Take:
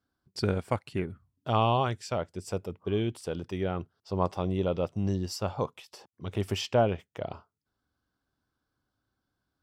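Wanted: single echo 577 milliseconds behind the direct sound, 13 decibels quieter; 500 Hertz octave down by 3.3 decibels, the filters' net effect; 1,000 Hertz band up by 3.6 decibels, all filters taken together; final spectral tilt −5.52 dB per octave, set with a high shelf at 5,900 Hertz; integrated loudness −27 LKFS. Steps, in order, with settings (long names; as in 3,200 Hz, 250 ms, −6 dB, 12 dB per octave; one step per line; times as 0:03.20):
parametric band 500 Hz −6.5 dB
parametric band 1,000 Hz +7 dB
high-shelf EQ 5,900 Hz −5.5 dB
single-tap delay 577 ms −13 dB
level +4 dB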